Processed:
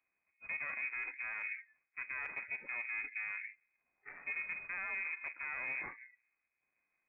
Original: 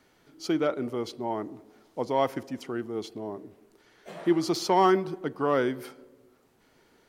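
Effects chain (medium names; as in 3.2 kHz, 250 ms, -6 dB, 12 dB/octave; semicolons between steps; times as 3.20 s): half-wave rectifier; frequency inversion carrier 2.5 kHz; spectral noise reduction 24 dB; reverse; compression 10:1, threshold -37 dBFS, peak gain reduction 20 dB; reverse; peak limiter -34 dBFS, peak gain reduction 10 dB; trim +4.5 dB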